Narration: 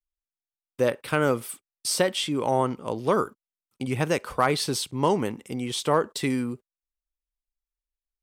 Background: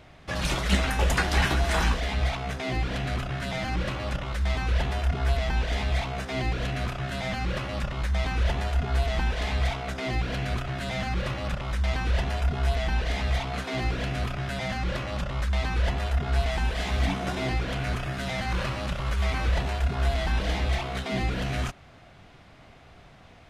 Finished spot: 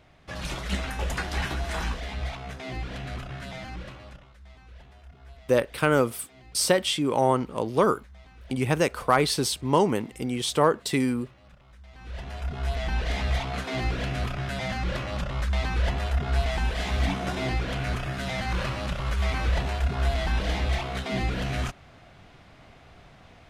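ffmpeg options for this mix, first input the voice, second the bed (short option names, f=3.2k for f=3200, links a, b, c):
-filter_complex "[0:a]adelay=4700,volume=1.5dB[a];[1:a]volume=17.5dB,afade=t=out:st=3.39:d=0.94:silence=0.133352,afade=t=in:st=11.92:d=1.21:silence=0.0668344[b];[a][b]amix=inputs=2:normalize=0"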